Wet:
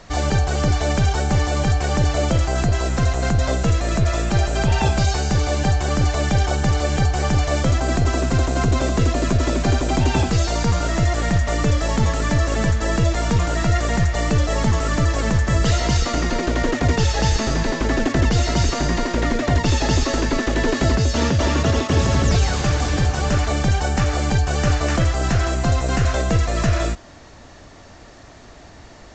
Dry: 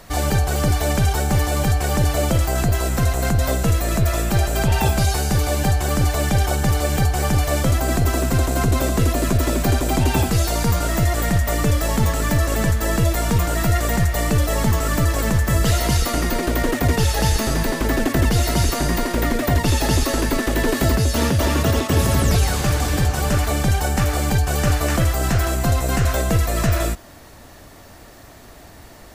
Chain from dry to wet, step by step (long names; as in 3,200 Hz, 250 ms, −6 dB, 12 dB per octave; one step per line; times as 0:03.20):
mu-law 128 kbit/s 16,000 Hz